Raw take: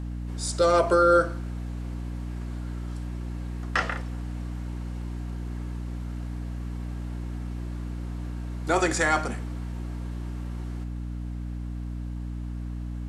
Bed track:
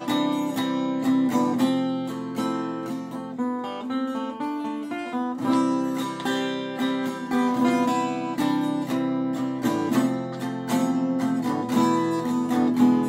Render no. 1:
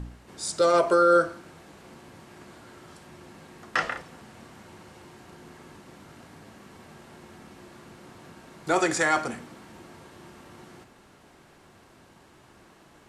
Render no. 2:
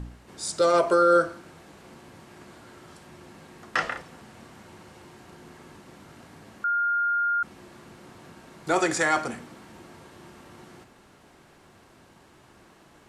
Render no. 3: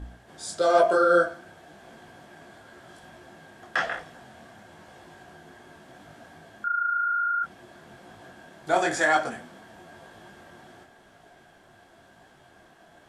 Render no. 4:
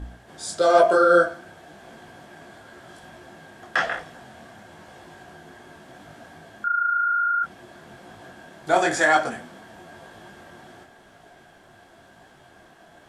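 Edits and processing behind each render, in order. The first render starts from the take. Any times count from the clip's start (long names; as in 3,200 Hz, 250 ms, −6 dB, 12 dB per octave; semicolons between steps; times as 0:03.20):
hum removal 60 Hz, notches 5
0:06.64–0:07.43: beep over 1,410 Hz −21.5 dBFS
hollow resonant body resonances 690/1,600/3,300 Hz, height 11 dB, ringing for 20 ms; micro pitch shift up and down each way 34 cents
level +3.5 dB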